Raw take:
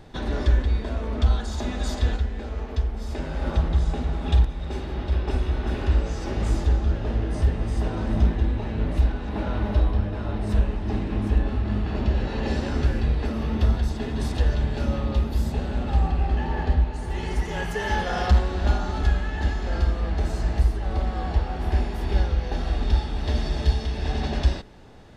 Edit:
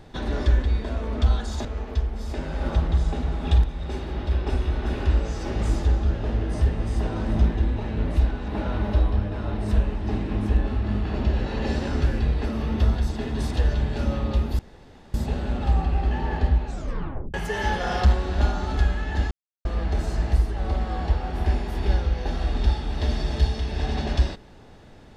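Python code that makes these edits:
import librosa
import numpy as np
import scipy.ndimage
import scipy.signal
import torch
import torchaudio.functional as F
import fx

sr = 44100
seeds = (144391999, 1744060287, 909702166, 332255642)

y = fx.edit(x, sr, fx.cut(start_s=1.65, length_s=0.81),
    fx.insert_room_tone(at_s=15.4, length_s=0.55),
    fx.tape_stop(start_s=16.91, length_s=0.69),
    fx.silence(start_s=19.57, length_s=0.34), tone=tone)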